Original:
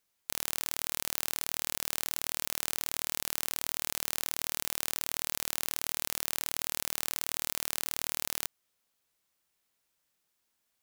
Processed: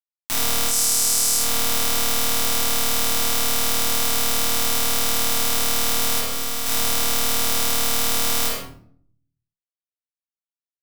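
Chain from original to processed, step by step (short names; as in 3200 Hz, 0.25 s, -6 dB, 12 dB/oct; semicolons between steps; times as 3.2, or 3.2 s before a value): resonator bank F#2 sus4, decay 0.28 s; 6.19–6.66 tube stage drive 26 dB, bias 0.7; crossover distortion -47 dBFS; 0.71–1.37 bell 8000 Hz +7.5 dB 1 oct; spectral noise reduction 7 dB; reverb RT60 0.55 s, pre-delay 5 ms, DRR -7.5 dB; compressor 4:1, threshold -46 dBFS, peak gain reduction 11 dB; maximiser +32 dB; gain -1 dB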